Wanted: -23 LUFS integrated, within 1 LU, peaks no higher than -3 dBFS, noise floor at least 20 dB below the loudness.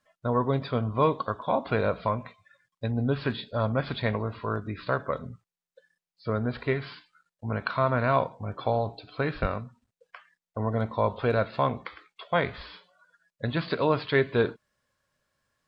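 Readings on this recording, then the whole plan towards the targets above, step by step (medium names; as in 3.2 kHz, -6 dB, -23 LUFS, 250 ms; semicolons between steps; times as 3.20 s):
loudness -28.5 LUFS; peak level -9.5 dBFS; loudness target -23.0 LUFS
-> trim +5.5 dB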